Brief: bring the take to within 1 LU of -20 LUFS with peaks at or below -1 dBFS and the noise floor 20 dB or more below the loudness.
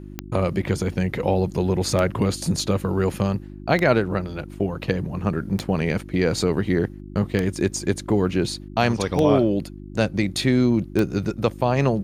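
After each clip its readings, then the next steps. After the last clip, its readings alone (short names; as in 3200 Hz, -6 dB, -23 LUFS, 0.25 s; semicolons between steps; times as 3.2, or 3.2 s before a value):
clicks 7; hum 50 Hz; harmonics up to 350 Hz; hum level -37 dBFS; loudness -23.0 LUFS; peak -5.0 dBFS; loudness target -20.0 LUFS
-> de-click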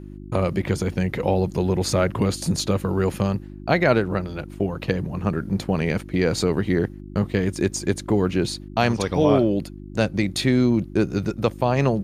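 clicks 0; hum 50 Hz; harmonics up to 350 Hz; hum level -37 dBFS
-> de-hum 50 Hz, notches 7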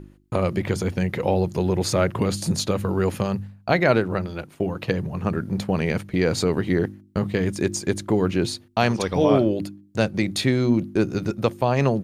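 hum none; loudness -23.5 LUFS; peak -5.0 dBFS; loudness target -20.0 LUFS
-> gain +3.5 dB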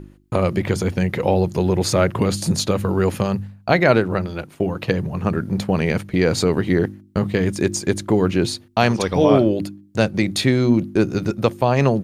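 loudness -20.0 LUFS; peak -1.5 dBFS; noise floor -49 dBFS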